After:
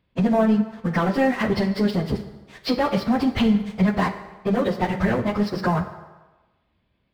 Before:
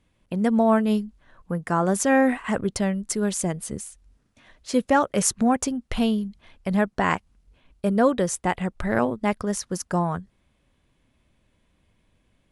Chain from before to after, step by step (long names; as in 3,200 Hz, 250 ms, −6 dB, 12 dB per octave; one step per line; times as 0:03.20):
high-pass filter 44 Hz 12 dB per octave
dynamic equaliser 110 Hz, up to +4 dB, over −47 dBFS, Q 2.5
downward compressor 8 to 1, threshold −29 dBFS, peak gain reduction 15 dB
downsampling to 11,025 Hz
leveller curve on the samples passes 3
convolution reverb RT60 2.1 s, pre-delay 4 ms, DRR 7 dB
time stretch by phase vocoder 0.57×
level +5.5 dB